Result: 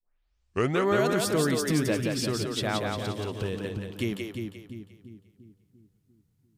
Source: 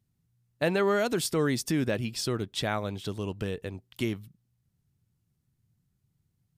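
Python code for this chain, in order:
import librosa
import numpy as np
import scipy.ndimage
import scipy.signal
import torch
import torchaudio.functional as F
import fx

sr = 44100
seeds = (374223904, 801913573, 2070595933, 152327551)

y = fx.tape_start_head(x, sr, length_s=0.86)
y = fx.echo_split(y, sr, split_hz=300.0, low_ms=346, high_ms=176, feedback_pct=52, wet_db=-3.5)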